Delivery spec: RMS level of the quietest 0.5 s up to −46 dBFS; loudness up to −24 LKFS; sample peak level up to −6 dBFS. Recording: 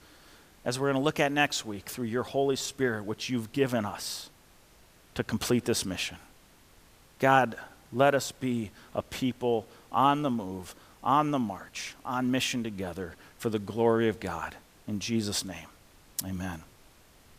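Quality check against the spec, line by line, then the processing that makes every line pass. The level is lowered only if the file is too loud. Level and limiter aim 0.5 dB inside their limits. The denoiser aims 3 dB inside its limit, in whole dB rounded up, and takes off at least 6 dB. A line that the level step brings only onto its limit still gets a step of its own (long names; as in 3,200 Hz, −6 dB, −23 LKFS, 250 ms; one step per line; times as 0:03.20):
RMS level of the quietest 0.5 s −58 dBFS: in spec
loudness −29.5 LKFS: in spec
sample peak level −7.0 dBFS: in spec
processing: no processing needed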